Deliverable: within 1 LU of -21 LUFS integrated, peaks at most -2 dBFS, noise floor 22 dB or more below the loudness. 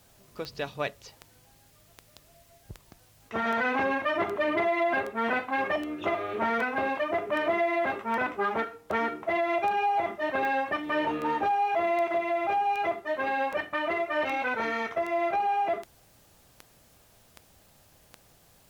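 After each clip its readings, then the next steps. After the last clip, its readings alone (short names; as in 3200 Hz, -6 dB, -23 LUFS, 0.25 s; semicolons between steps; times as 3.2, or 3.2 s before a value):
clicks 24; loudness -28.5 LUFS; peak -15.5 dBFS; loudness target -21.0 LUFS
-> de-click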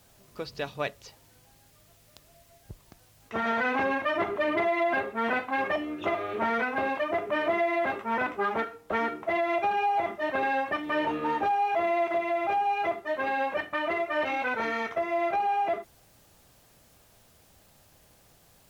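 clicks 0; loudness -28.5 LUFS; peak -15.5 dBFS; loudness target -21.0 LUFS
-> gain +7.5 dB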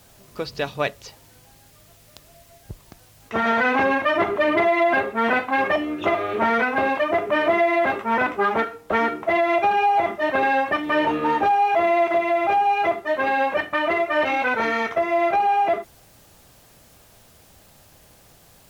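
loudness -21.0 LUFS; peak -8.0 dBFS; noise floor -52 dBFS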